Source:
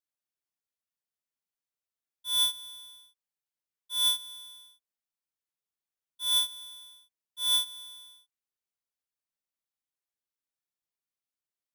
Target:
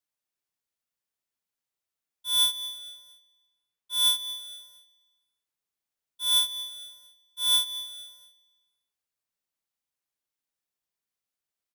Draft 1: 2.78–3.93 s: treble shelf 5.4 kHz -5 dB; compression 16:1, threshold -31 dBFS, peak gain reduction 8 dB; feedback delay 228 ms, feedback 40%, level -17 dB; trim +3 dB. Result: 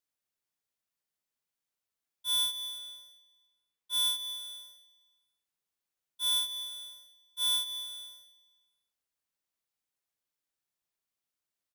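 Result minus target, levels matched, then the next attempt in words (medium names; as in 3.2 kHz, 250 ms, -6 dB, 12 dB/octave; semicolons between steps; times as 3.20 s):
compression: peak gain reduction +8 dB
2.78–3.93 s: treble shelf 5.4 kHz -5 dB; feedback delay 228 ms, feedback 40%, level -17 dB; trim +3 dB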